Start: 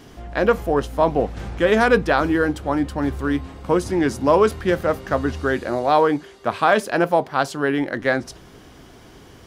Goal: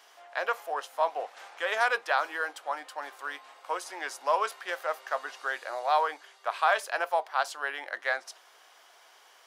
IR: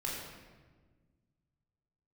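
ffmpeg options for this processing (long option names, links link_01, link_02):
-af "highpass=frequency=680:width=0.5412,highpass=frequency=680:width=1.3066,volume=-6dB"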